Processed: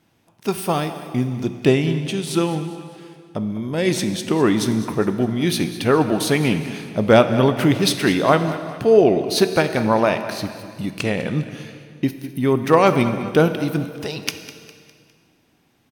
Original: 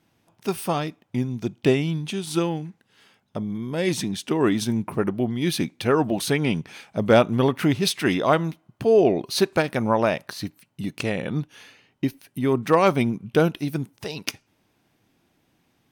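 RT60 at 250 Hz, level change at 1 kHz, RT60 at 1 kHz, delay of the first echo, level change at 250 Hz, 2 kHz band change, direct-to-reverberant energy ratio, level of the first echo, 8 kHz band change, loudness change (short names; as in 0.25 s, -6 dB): 2.2 s, +4.0 dB, 2.0 s, 0.203 s, +4.0 dB, +4.0 dB, 8.0 dB, -15.0 dB, +4.0 dB, +4.0 dB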